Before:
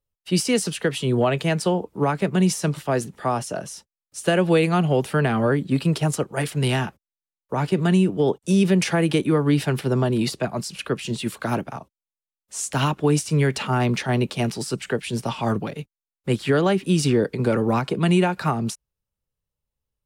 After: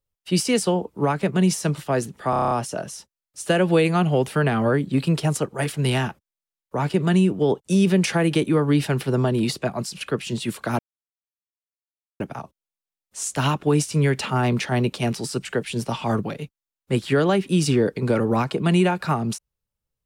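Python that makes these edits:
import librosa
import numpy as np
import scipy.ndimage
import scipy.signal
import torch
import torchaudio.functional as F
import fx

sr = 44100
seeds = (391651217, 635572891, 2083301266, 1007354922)

y = fx.edit(x, sr, fx.cut(start_s=0.62, length_s=0.99),
    fx.stutter(start_s=3.29, slice_s=0.03, count=8),
    fx.insert_silence(at_s=11.57, length_s=1.41), tone=tone)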